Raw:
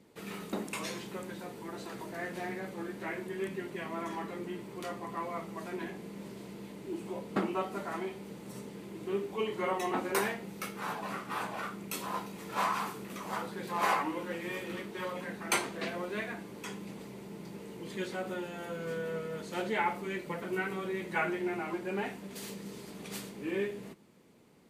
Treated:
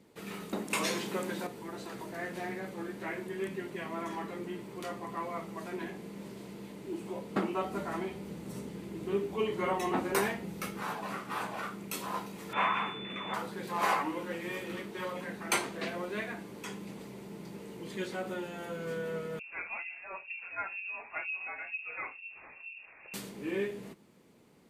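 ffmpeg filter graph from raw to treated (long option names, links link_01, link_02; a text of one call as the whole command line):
ffmpeg -i in.wav -filter_complex "[0:a]asettb=1/sr,asplit=3[link_01][link_02][link_03];[link_01]atrim=end=0.704[link_04];[link_02]atrim=start=0.7:end=1.47,asetpts=PTS-STARTPTS,afade=type=in:duration=0.004:curve=qsin,afade=type=out:start_time=0.766:duration=0.004:curve=qsin,highpass=170,acontrast=72[link_05];[link_03]atrim=start=1.466[link_06];[link_04][link_05]acrossfade=duration=0.004:curve1=hsin:curve2=qsin[link_07];[link_07][link_06]acrossfade=duration=0.004:curve1=qsin:curve2=hsin,asettb=1/sr,asplit=3[link_08][link_09][link_10];[link_08]atrim=end=7.634[link_11];[link_09]atrim=start=7.63:end=10.83,asetpts=PTS-STARTPTS,afade=type=in:duration=0.004:curve=qsin,afade=type=out:start_time=3.196:duration=0.004:curve=qsin,lowshelf=frequency=180:gain=9,asplit=2[link_12][link_13];[link_13]adelay=12,volume=-11dB[link_14];[link_12][link_14]amix=inputs=2:normalize=0,atrim=end_sample=141120[link_15];[link_10]atrim=start=10.826[link_16];[link_11][link_15]acrossfade=duration=0.004:curve1=hsin:curve2=qsin[link_17];[link_17][link_16]acrossfade=duration=0.004:curve1=qsin:curve2=hsin,asettb=1/sr,asplit=3[link_18][link_19][link_20];[link_18]atrim=end=12.534[link_21];[link_19]atrim=start=12.53:end=13.34,asetpts=PTS-STARTPTS,afade=type=in:duration=0.004:curve=qsin,afade=type=out:start_time=0.806:duration=0.004:curve=qsin,lowpass=7800,highshelf=frequency=3400:width_type=q:width=3:gain=-12,aeval=exprs='val(0)+0.00708*sin(2*PI*3500*n/s)':channel_layout=same[link_22];[link_20]atrim=start=13.336[link_23];[link_21][link_22]acrossfade=duration=0.004:curve1=hsin:curve2=qsin[link_24];[link_24][link_23]acrossfade=duration=0.004:curve1=qsin:curve2=hsin,asettb=1/sr,asplit=3[link_25][link_26][link_27];[link_25]atrim=end=19.394[link_28];[link_26]atrim=start=19.39:end=23.14,asetpts=PTS-STARTPTS,afade=type=in:duration=0.004:curve=qsin,afade=type=out:start_time=3.746:duration=0.004:curve=qsin,acrossover=split=500[link_29][link_30];[link_29]aeval=exprs='val(0)*(1-1/2+1/2*cos(2*PI*2.1*n/s))':channel_layout=same[link_31];[link_30]aeval=exprs='val(0)*(1-1/2-1/2*cos(2*PI*2.1*n/s))':channel_layout=same[link_32];[link_31][link_32]amix=inputs=2:normalize=0,lowpass=frequency=2500:width_type=q:width=0.5098,lowpass=frequency=2500:width_type=q:width=0.6013,lowpass=frequency=2500:width_type=q:width=0.9,lowpass=frequency=2500:width_type=q:width=2.563,afreqshift=-2900[link_33];[link_27]atrim=start=23.136[link_34];[link_28][link_33]acrossfade=duration=0.004:curve1=hsin:curve2=qsin[link_35];[link_35][link_34]acrossfade=duration=0.004:curve1=qsin:curve2=hsin" out.wav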